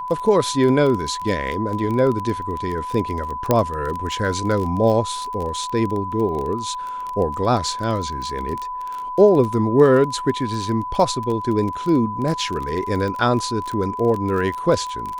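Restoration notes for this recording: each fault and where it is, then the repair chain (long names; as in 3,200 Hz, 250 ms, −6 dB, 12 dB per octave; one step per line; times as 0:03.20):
surface crackle 22 per second −24 dBFS
whistle 1,000 Hz −26 dBFS
0:03.51: click −3 dBFS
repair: click removal
notch filter 1,000 Hz, Q 30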